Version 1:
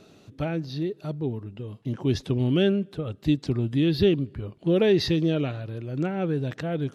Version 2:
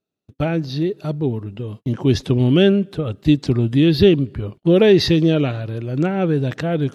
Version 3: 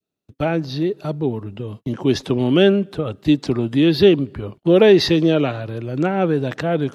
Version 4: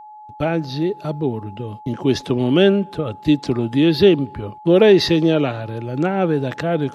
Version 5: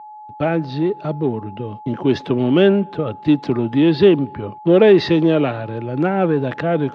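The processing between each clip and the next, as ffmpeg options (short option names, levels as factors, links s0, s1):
-af "agate=range=0.01:threshold=0.00708:ratio=16:detection=peak,volume=2.51"
-filter_complex "[0:a]adynamicequalizer=threshold=0.0355:dfrequency=930:dqfactor=0.92:tfrequency=930:tqfactor=0.92:attack=5:release=100:ratio=0.375:range=2.5:mode=boostabove:tftype=bell,acrossover=split=180|790[s0][s1][s2];[s0]acompressor=threshold=0.0316:ratio=6[s3];[s3][s1][s2]amix=inputs=3:normalize=0"
-af "aeval=exprs='val(0)+0.0141*sin(2*PI*850*n/s)':c=same"
-filter_complex "[0:a]asplit=2[s0][s1];[s1]volume=8.41,asoftclip=hard,volume=0.119,volume=0.316[s2];[s0][s2]amix=inputs=2:normalize=0,highpass=110,lowpass=2900"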